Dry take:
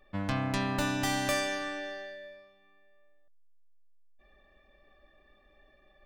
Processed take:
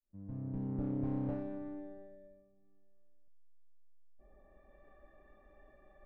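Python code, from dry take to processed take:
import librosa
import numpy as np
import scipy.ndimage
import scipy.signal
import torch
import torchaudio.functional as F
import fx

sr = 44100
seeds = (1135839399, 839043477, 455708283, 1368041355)

y = fx.fade_in_head(x, sr, length_s=1.27)
y = fx.filter_sweep_lowpass(y, sr, from_hz=270.0, to_hz=1300.0, start_s=3.37, end_s=4.82, q=0.79)
y = fx.doppler_dist(y, sr, depth_ms=0.48)
y = y * librosa.db_to_amplitude(2.0)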